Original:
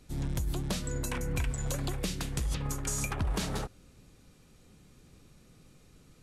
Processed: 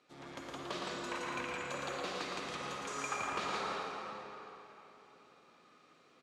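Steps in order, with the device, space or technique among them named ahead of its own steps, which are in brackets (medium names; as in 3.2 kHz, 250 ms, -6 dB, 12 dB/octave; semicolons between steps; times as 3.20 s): station announcement (band-pass 470–3700 Hz; peaking EQ 1.2 kHz +8 dB 0.24 oct; loudspeakers at several distances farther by 39 m -4 dB, 57 m -4 dB; reverberation RT60 3.4 s, pre-delay 45 ms, DRR -1 dB); trim -4 dB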